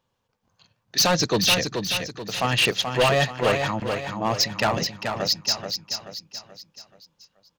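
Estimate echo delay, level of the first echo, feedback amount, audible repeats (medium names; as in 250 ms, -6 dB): 431 ms, -6.0 dB, 43%, 4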